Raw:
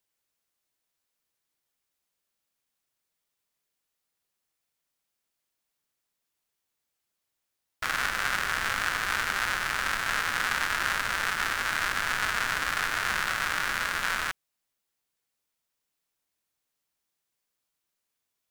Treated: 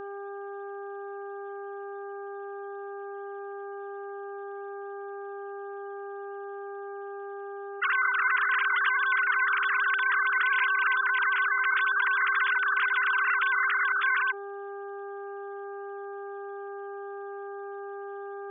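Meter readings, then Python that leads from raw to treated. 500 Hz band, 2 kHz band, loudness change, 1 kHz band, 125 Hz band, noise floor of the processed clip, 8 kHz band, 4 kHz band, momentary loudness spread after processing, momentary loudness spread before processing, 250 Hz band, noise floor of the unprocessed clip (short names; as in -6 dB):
+10.5 dB, +5.0 dB, +3.0 dB, +3.5 dB, under -30 dB, -38 dBFS, under -40 dB, -7.0 dB, 15 LU, 1 LU, n/a, -83 dBFS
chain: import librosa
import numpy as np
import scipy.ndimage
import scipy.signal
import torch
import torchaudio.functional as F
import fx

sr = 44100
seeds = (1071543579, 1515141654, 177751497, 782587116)

y = fx.sine_speech(x, sr)
y = fx.dmg_buzz(y, sr, base_hz=400.0, harmonics=4, level_db=-55.0, tilt_db=-6, odd_only=False)
y = fx.env_flatten(y, sr, amount_pct=50)
y = F.gain(torch.from_numpy(y), 1.5).numpy()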